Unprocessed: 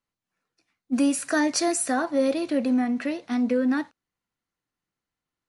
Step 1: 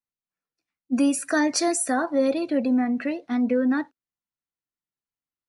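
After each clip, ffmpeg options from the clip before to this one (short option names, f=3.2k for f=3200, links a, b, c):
-af "afftdn=nr=14:nf=-41,volume=1dB"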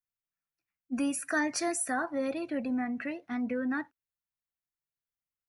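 -af "equalizer=f=250:t=o:w=1:g=-8,equalizer=f=500:t=o:w=1:g=-9,equalizer=f=1k:t=o:w=1:g=-4,equalizer=f=4k:t=o:w=1:g=-10,equalizer=f=8k:t=o:w=1:g=-7"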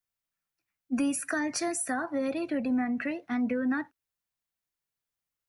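-filter_complex "[0:a]acrossover=split=240[a][b];[b]acompressor=threshold=-33dB:ratio=6[c];[a][c]amix=inputs=2:normalize=0,volume=4.5dB"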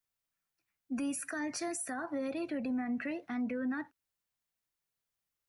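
-af "alimiter=level_in=5dB:limit=-24dB:level=0:latency=1:release=165,volume=-5dB"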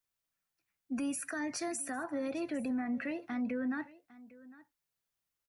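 -af "aecho=1:1:804:0.1"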